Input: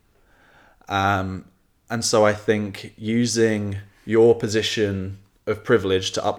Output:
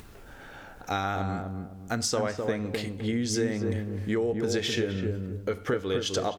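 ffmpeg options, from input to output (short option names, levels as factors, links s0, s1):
-filter_complex "[0:a]acompressor=threshold=0.0501:ratio=6,asplit=2[s0][s1];[s1]adelay=256,lowpass=f=850:p=1,volume=0.708,asplit=2[s2][s3];[s3]adelay=256,lowpass=f=850:p=1,volume=0.32,asplit=2[s4][s5];[s5]adelay=256,lowpass=f=850:p=1,volume=0.32,asplit=2[s6][s7];[s7]adelay=256,lowpass=f=850:p=1,volume=0.32[s8];[s2][s4][s6][s8]amix=inputs=4:normalize=0[s9];[s0][s9]amix=inputs=2:normalize=0,acompressor=mode=upward:threshold=0.0141:ratio=2.5"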